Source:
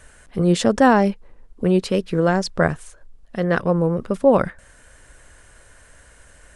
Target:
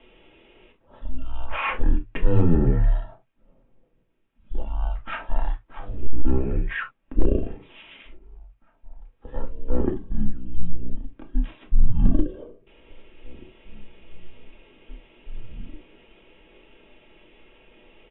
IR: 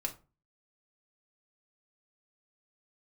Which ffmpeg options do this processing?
-filter_complex "[0:a]asplit=2[s0][s1];[s1]adelay=1283,volume=0.112,highshelf=f=4000:g=-28.9[s2];[s0][s2]amix=inputs=2:normalize=0,asetrate=15964,aresample=44100,highpass=f=160:t=q:w=0.5412,highpass=f=160:t=q:w=1.307,lowpass=f=3400:t=q:w=0.5176,lowpass=f=3400:t=q:w=0.7071,lowpass=f=3400:t=q:w=1.932,afreqshift=-180[s3];[1:a]atrim=start_sample=2205,atrim=end_sample=3528[s4];[s3][s4]afir=irnorm=-1:irlink=0,asoftclip=type=hard:threshold=0.631,volume=0.75"

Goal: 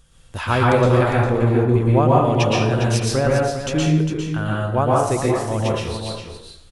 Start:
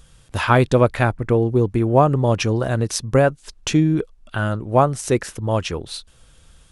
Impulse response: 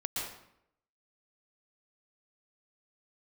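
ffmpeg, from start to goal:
-filter_complex "[0:a]asettb=1/sr,asplit=3[s0][s1][s2];[s0]atrim=end=1.764[s3];[s1]atrim=start=1.76:end=3.14,asetpts=PTS-STARTPTS,afade=t=in:d=0.004:c=qsin,afade=t=out:st=1.376:d=0.004:c=qsin,equalizer=f=2900:t=o:w=1.3:g=5.5[s4];[s2]atrim=start=3.136[s5];[s3][s4]acrossfade=d=0.004:c1=hsin:c2=qsin[s6];[s6][s5]acrossfade=d=0.004:c1=qsin:c2=hsin,aecho=1:1:404:0.376[s7];[1:a]atrim=start_sample=2205[s8];[s7][s8]afir=irnorm=-1:irlink=0,volume=0.631"

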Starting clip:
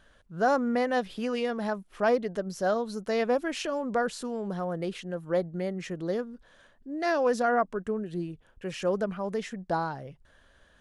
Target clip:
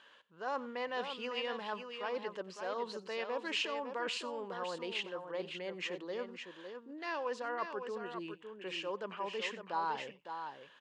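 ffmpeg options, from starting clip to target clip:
-af "areverse,acompressor=threshold=0.02:ratio=6,areverse,highpass=470,equalizer=f=670:t=q:w=4:g=-10,equalizer=f=990:t=q:w=4:g=7,equalizer=f=1400:t=q:w=4:g=-4,equalizer=f=2800:t=q:w=4:g=8,equalizer=f=5800:t=q:w=4:g=-7,lowpass=f=6700:w=0.5412,lowpass=f=6700:w=1.3066,aecho=1:1:91|557:0.106|0.422,volume=1.26"

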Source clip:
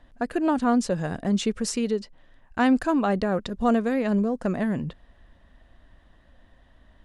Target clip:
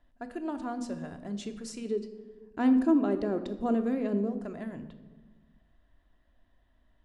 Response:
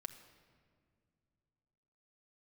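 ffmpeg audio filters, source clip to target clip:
-filter_complex "[0:a]asplit=3[s0][s1][s2];[s0]afade=t=out:st=1.85:d=0.02[s3];[s1]equalizer=f=340:w=1.1:g=13,afade=t=in:st=1.85:d=0.02,afade=t=out:st=4.28:d=0.02[s4];[s2]afade=t=in:st=4.28:d=0.02[s5];[s3][s4][s5]amix=inputs=3:normalize=0[s6];[1:a]atrim=start_sample=2205,asetrate=83790,aresample=44100[s7];[s6][s7]afir=irnorm=-1:irlink=0,volume=0.668"

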